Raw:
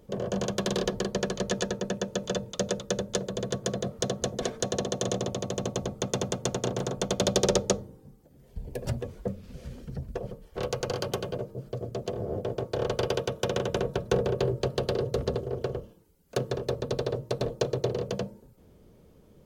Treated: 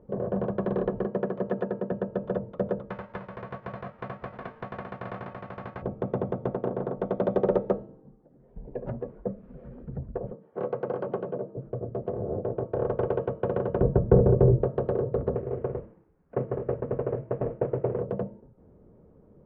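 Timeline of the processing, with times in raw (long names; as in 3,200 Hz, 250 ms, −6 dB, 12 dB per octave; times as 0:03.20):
0:01.06–0:01.92: high-pass filter 140 Hz
0:02.89–0:05.81: spectral envelope flattened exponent 0.1
0:06.51–0:09.80: parametric band 84 Hz −15 dB
0:10.32–0:11.57: high-pass filter 150 Hz 24 dB per octave
0:13.81–0:14.64: spectral tilt −3.5 dB per octave
0:15.35–0:18.01: variable-slope delta modulation 16 kbit/s
whole clip: Bessel low-pass filter 1,000 Hz, order 4; low-shelf EQ 92 Hz −5 dB; hum removal 326.7 Hz, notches 28; level +2.5 dB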